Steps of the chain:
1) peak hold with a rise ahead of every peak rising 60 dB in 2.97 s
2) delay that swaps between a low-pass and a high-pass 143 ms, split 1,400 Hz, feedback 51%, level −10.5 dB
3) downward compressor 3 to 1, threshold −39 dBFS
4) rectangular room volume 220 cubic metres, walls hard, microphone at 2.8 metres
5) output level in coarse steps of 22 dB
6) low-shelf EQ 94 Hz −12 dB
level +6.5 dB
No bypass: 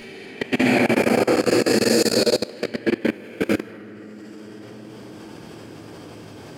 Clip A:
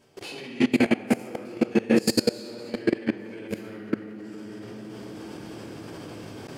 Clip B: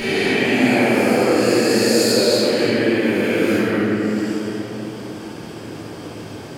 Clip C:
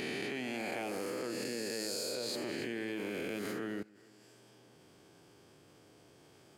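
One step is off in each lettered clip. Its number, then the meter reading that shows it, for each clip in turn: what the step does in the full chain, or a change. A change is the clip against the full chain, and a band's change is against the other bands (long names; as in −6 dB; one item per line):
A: 1, 250 Hz band +5.0 dB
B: 5, change in crest factor −3.0 dB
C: 4, change in momentary loudness spread −19 LU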